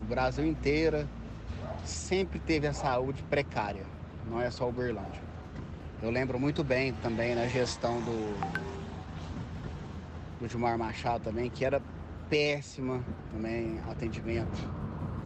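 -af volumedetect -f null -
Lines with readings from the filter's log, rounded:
mean_volume: -32.9 dB
max_volume: -16.4 dB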